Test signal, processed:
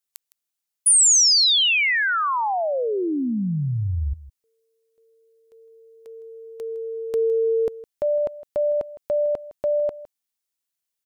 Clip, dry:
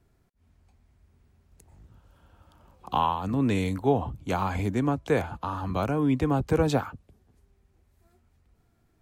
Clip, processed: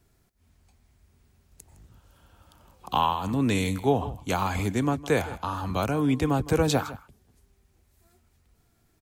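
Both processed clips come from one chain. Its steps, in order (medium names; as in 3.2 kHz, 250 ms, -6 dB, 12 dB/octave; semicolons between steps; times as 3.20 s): treble shelf 2.9 kHz +10 dB; delay 160 ms -17.5 dB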